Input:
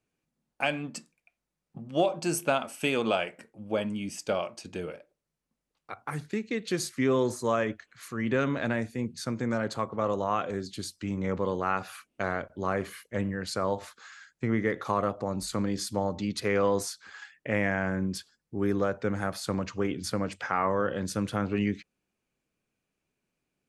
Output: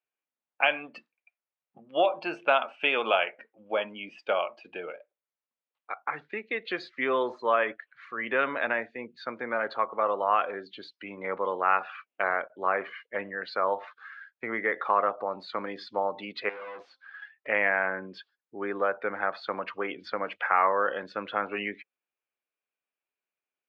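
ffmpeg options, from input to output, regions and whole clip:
ffmpeg -i in.wav -filter_complex "[0:a]asettb=1/sr,asplit=3[link_01][link_02][link_03];[link_01]atrim=end=16.494[link_04];[link_02]atrim=start=16.49:end=17.47,asetpts=PTS-STARTPTS,afade=type=in:duration=0.004:curve=qsin,afade=type=out:start_time=0.976:duration=0.004:curve=qsin,bandreject=frequency=263.2:width_type=h:width=4,bandreject=frequency=526.4:width_type=h:width=4,bandreject=frequency=789.6:width_type=h:width=4,bandreject=frequency=1052.8:width_type=h:width=4,bandreject=frequency=1316:width_type=h:width=4,aeval=exprs='(tanh(100*val(0)+0.55)-tanh(0.55))/100':channel_layout=same[link_05];[link_03]atrim=start=17.466[link_06];[link_04][link_05]acrossfade=duration=0.004:curve1=hsin:curve2=qsin[link_07];[link_07][link_06]acrossfade=duration=0.004:curve1=qsin:curve2=hsin,lowpass=frequency=3400:width=0.5412,lowpass=frequency=3400:width=1.3066,afftdn=noise_reduction=13:noise_floor=-48,highpass=660,volume=6dB" out.wav

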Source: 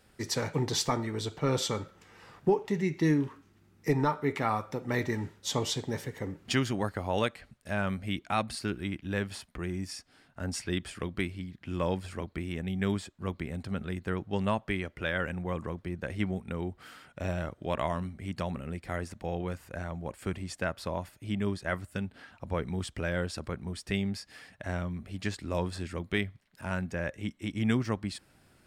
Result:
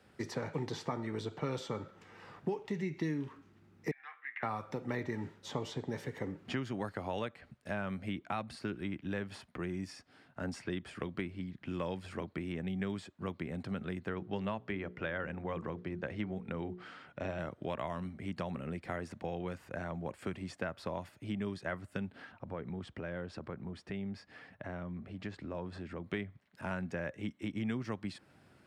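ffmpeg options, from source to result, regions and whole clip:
ffmpeg -i in.wav -filter_complex "[0:a]asettb=1/sr,asplit=3[link_01][link_02][link_03];[link_01]atrim=end=3.914[link_04];[link_02]atrim=start=3.91:end=4.43,asetpts=PTS-STARTPTS,afade=type=in:duration=0.004:curve=qsin,afade=type=out:start_time=0.516:duration=0.004:curve=qsin,afreqshift=-130,asuperpass=centerf=2100:order=4:qfactor=2[link_05];[link_03]atrim=start=4.426[link_06];[link_04][link_05]acrossfade=duration=0.004:curve1=hsin:curve2=qsin[link_07];[link_07][link_06]acrossfade=duration=0.004:curve1=qsin:curve2=hsin,asettb=1/sr,asplit=3[link_08][link_09][link_10];[link_08]atrim=end=14.074[link_11];[link_09]atrim=start=14.07:end=17.39,asetpts=PTS-STARTPTS,afade=type=in:duration=0.004:curve=qsin,afade=type=out:start_time=3.316:duration=0.004:curve=qsin,lowpass=5800,bandreject=frequency=60:width_type=h:width=6,bandreject=frequency=120:width_type=h:width=6,bandreject=frequency=180:width_type=h:width=6,bandreject=frequency=240:width_type=h:width=6,bandreject=frequency=300:width_type=h:width=6,bandreject=frequency=360:width_type=h:width=6,bandreject=frequency=420:width_type=h:width=6,bandreject=frequency=480:width_type=h:width=6[link_12];[link_10]atrim=start=17.386[link_13];[link_11][link_12]acrossfade=duration=0.004:curve1=hsin:curve2=qsin[link_14];[link_14][link_13]acrossfade=duration=0.004:curve1=qsin:curve2=hsin,asettb=1/sr,asplit=3[link_15][link_16][link_17];[link_15]atrim=end=22.324[link_18];[link_16]atrim=start=22.32:end=26.06,asetpts=PTS-STARTPTS,afade=type=in:duration=0.004:curve=qsin,afade=type=out:start_time=3.736:duration=0.004:curve=qsin,lowpass=frequency=2100:poles=1,acompressor=threshold=-40dB:ratio=2:attack=3.2:release=140:knee=1:detection=peak[link_19];[link_17]atrim=start=26.056[link_20];[link_18][link_19]acrossfade=duration=0.004:curve1=hsin:curve2=qsin[link_21];[link_21][link_20]acrossfade=duration=0.004:curve1=qsin:curve2=hsin,lowpass=frequency=2700:poles=1,acrossover=split=120|2100[link_22][link_23][link_24];[link_22]acompressor=threshold=-51dB:ratio=4[link_25];[link_23]acompressor=threshold=-36dB:ratio=4[link_26];[link_24]acompressor=threshold=-51dB:ratio=4[link_27];[link_25][link_26][link_27]amix=inputs=3:normalize=0,highpass=87,volume=1dB" out.wav

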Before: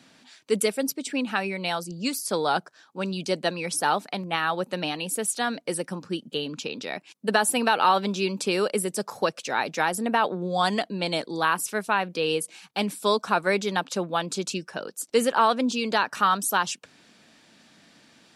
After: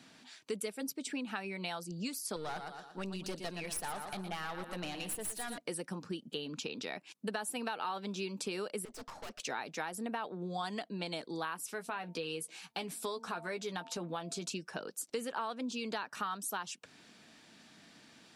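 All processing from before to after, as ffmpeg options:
ffmpeg -i in.wav -filter_complex "[0:a]asettb=1/sr,asplit=3[link_01][link_02][link_03];[link_01]atrim=end=2.364[link_04];[link_02]atrim=start=2.36:end=5.58,asetpts=PTS-STARTPTS,afade=type=in:duration=0.004:curve=qsin,afade=type=out:start_time=3.216:duration=0.004:curve=qsin,equalizer=frequency=11000:width_type=o:width=0.63:gain=7.5,aecho=1:1:116|232|348|464:0.316|0.126|0.0506|0.0202,atrim=end_sample=142002,aeval=exprs='(tanh(14.1*val(0)+0.65)-tanh(0.65))/14.1':channel_layout=same[link_05];[link_03]atrim=start=5.576[link_06];[link_04][link_05]acrossfade=duration=0.004:curve1=hsin:curve2=qsin[link_07];[link_07][link_06]acrossfade=duration=0.004:curve1=qsin:curve2=hsin,asettb=1/sr,asplit=3[link_08][link_09][link_10];[link_08]atrim=end=8.854[link_11];[link_09]atrim=start=8.85:end=9.4,asetpts=PTS-STARTPTS,afade=type=in:duration=0.004:curve=qsin,afade=type=out:start_time=0.546:duration=0.004:curve=qsin,afreqshift=58,highpass=210,lowpass=5700,aeval=exprs='(tanh(100*val(0)+0.6)-tanh(0.6))/100':channel_layout=same[link_12];[link_10]atrim=start=9.396[link_13];[link_11][link_12]acrossfade=duration=0.004:curve1=hsin:curve2=qsin[link_14];[link_14][link_13]acrossfade=duration=0.004:curve1=qsin:curve2=hsin,asettb=1/sr,asplit=3[link_15][link_16][link_17];[link_15]atrim=end=11.684[link_18];[link_16]atrim=start=11.68:end=14.5,asetpts=PTS-STARTPTS,afade=type=in:duration=0.004:curve=qsin,afade=type=out:start_time=2.816:duration=0.004:curve=qsin,bandreject=frequency=225.8:width_type=h:width=4,bandreject=frequency=451.6:width_type=h:width=4,bandreject=frequency=677.4:width_type=h:width=4,bandreject=frequency=903.2:width_type=h:width=4,acompressor=threshold=-29dB:ratio=1.5:attack=3.2:release=140:knee=1:detection=peak,asplit=2[link_19][link_20];[link_20]adelay=12,volume=-7dB[link_21];[link_19][link_21]amix=inputs=2:normalize=0,atrim=end_sample=124362[link_22];[link_17]atrim=start=14.496[link_23];[link_18][link_22]acrossfade=duration=0.004:curve1=hsin:curve2=qsin[link_24];[link_24][link_23]acrossfade=duration=0.004:curve1=qsin:curve2=hsin,bandreject=frequency=550:width=12,acompressor=threshold=-34dB:ratio=4,volume=-3dB" out.wav

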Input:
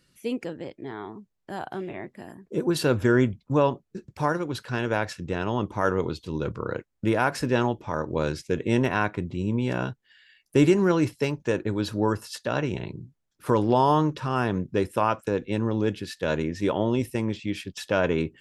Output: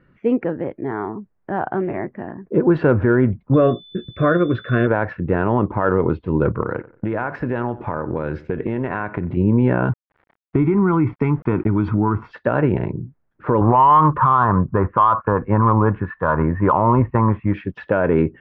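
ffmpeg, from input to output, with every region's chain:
ffmpeg -i in.wav -filter_complex "[0:a]asettb=1/sr,asplit=3[link_01][link_02][link_03];[link_01]atrim=end=3.544[link_04];[link_02]atrim=start=3.54:end=4.87,asetpts=PTS-STARTPTS,afade=type=in:duration=0.004:curve=qsin,afade=type=out:start_time=1.326:duration=0.004:curve=qsin,asplit=2[link_05][link_06];[link_06]adelay=17,volume=-12dB[link_07];[link_05][link_07]amix=inputs=2:normalize=0,atrim=end_sample=58653,aeval=exprs='val(0)+0.0316*sin(2*PI*3500*n/s)':channel_layout=same,asuperstop=centerf=870:order=12:qfactor=2.6[link_08];[link_03]atrim=start=4.866[link_09];[link_04][link_08]acrossfade=duration=0.004:curve1=hsin:curve2=qsin[link_10];[link_10][link_09]acrossfade=duration=0.004:curve1=qsin:curve2=hsin,asettb=1/sr,asplit=3[link_11][link_12][link_13];[link_11]atrim=end=6.624[link_14];[link_12]atrim=start=6.62:end=9.37,asetpts=PTS-STARTPTS,afade=type=in:duration=0.004:curve=qsin,afade=type=out:start_time=2.746:duration=0.004:curve=qsin,aemphasis=mode=production:type=75kf,acompressor=threshold=-29dB:ratio=8:attack=3.2:release=140:knee=1:detection=peak,asplit=2[link_15][link_16];[link_16]adelay=91,lowpass=frequency=4600:poles=1,volume=-18.5dB,asplit=2[link_17][link_18];[link_18]adelay=91,lowpass=frequency=4600:poles=1,volume=0.32,asplit=2[link_19][link_20];[link_20]adelay=91,lowpass=frequency=4600:poles=1,volume=0.32[link_21];[link_15][link_17][link_19][link_21]amix=inputs=4:normalize=0,atrim=end_sample=121275[link_22];[link_13]atrim=start=9.366[link_23];[link_14][link_22]acrossfade=duration=0.004:curve1=hsin:curve2=qsin[link_24];[link_24][link_23]acrossfade=duration=0.004:curve1=qsin:curve2=hsin,asettb=1/sr,asplit=3[link_25][link_26][link_27];[link_25]atrim=end=9.894[link_28];[link_26]atrim=start=9.89:end=12.32,asetpts=PTS-STARTPTS,afade=type=in:duration=0.004:curve=qsin,afade=type=out:start_time=2.426:duration=0.004:curve=qsin,aecho=1:1:0.9:0.93,atrim=end_sample=107163,acompressor=threshold=-23dB:ratio=12:attack=3.2:release=140:knee=1:detection=peak,aeval=exprs='val(0)*gte(abs(val(0)),0.00335)':channel_layout=same[link_29];[link_27]atrim=start=12.316[link_30];[link_28][link_29]acrossfade=duration=0.004:curve1=hsin:curve2=qsin[link_31];[link_31][link_30]acrossfade=duration=0.004:curve1=qsin:curve2=hsin,asettb=1/sr,asplit=3[link_32][link_33][link_34];[link_32]atrim=end=13.614[link_35];[link_33]atrim=start=13.61:end=17.54,asetpts=PTS-STARTPTS,afade=type=in:duration=0.004:curve=qsin,afade=type=out:start_time=3.926:duration=0.004:curve=qsin,lowpass=frequency=1100:width_type=q:width=6.4,equalizer=frequency=360:width_type=o:width=2.2:gain=-12.5,acontrast=81[link_36];[link_34]atrim=start=17.536[link_37];[link_35][link_36]acrossfade=duration=0.004:curve1=hsin:curve2=qsin[link_38];[link_38][link_37]acrossfade=duration=0.004:curve1=qsin:curve2=hsin,lowpass=frequency=1800:width=0.5412,lowpass=frequency=1800:width=1.3066,alimiter=limit=-17dB:level=0:latency=1:release=75,acontrast=74,volume=4.5dB" out.wav

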